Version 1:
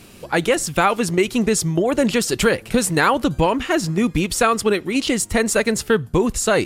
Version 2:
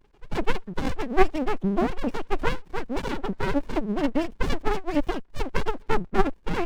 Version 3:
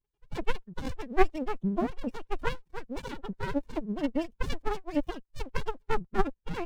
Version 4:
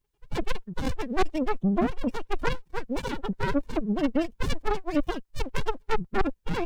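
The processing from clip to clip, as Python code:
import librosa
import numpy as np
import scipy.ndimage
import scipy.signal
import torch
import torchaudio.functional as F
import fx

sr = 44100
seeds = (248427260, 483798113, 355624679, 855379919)

y1 = fx.sine_speech(x, sr)
y1 = fx.spec_gate(y1, sr, threshold_db=-25, keep='strong')
y1 = fx.running_max(y1, sr, window=65)
y2 = fx.bin_expand(y1, sr, power=1.5)
y2 = y2 * librosa.db_to_amplitude(-3.0)
y3 = 10.0 ** (-26.0 / 20.0) * np.tanh(y2 / 10.0 ** (-26.0 / 20.0))
y3 = y3 * librosa.db_to_amplitude(8.0)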